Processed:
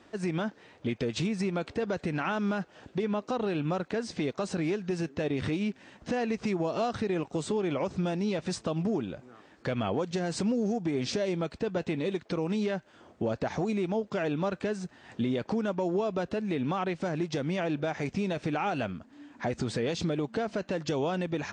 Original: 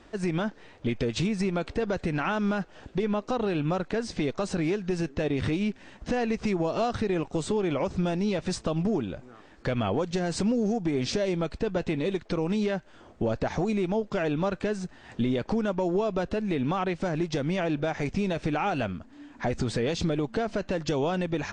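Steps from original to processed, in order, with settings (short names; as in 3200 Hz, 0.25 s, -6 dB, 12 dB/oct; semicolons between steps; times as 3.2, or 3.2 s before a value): HPF 100 Hz 12 dB/oct; gain -2.5 dB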